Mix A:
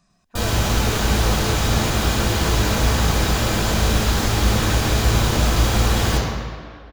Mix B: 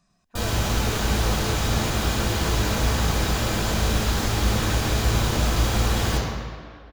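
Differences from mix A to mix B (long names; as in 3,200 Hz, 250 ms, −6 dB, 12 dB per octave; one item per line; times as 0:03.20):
speech −4.0 dB
background −4.0 dB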